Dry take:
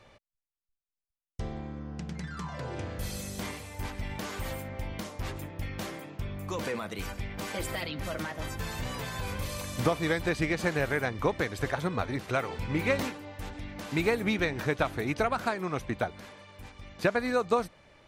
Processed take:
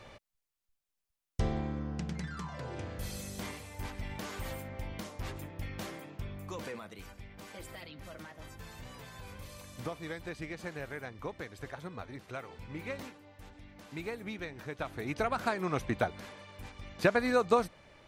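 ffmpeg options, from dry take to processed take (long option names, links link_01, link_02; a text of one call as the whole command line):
ffmpeg -i in.wav -af "volume=17.5dB,afade=type=out:start_time=1.4:duration=1.09:silence=0.354813,afade=type=out:start_time=6.13:duration=0.91:silence=0.375837,afade=type=in:start_time=14.71:duration=1.02:silence=0.237137" out.wav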